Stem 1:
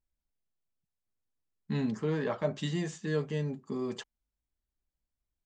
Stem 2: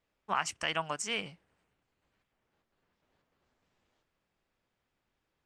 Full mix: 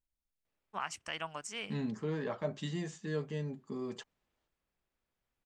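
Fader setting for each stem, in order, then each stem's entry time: -5.0 dB, -7.0 dB; 0.00 s, 0.45 s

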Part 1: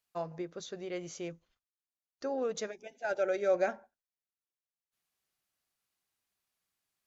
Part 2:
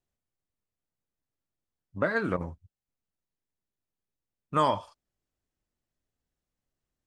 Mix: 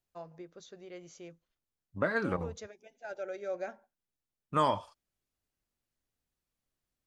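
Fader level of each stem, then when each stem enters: -8.5 dB, -3.0 dB; 0.00 s, 0.00 s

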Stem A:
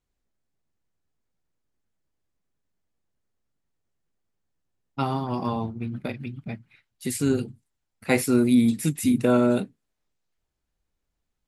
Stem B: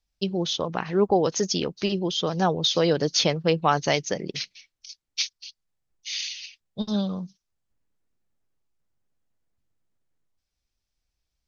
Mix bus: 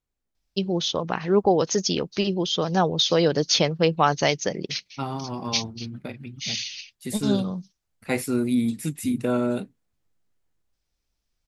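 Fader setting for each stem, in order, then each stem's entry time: -4.0 dB, +1.5 dB; 0.00 s, 0.35 s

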